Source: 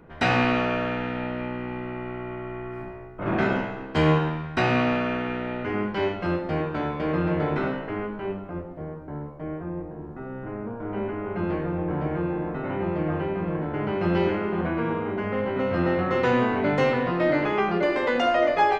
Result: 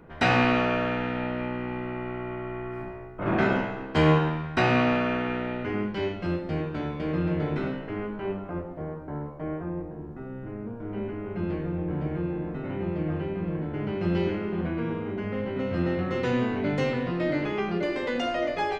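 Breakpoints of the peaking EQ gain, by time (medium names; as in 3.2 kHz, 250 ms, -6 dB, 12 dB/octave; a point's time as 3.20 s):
peaking EQ 1 kHz 2.3 oct
5.38 s 0 dB
5.98 s -8.5 dB
7.79 s -8.5 dB
8.46 s +1.5 dB
9.53 s +1.5 dB
10.46 s -9.5 dB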